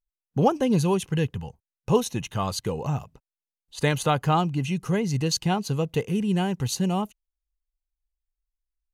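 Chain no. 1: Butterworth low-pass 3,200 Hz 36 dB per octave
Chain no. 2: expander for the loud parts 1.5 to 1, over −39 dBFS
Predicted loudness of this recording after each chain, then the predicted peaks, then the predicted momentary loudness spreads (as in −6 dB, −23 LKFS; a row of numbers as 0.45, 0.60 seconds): −26.0, −28.5 LKFS; −7.5, −8.0 dBFS; 8, 10 LU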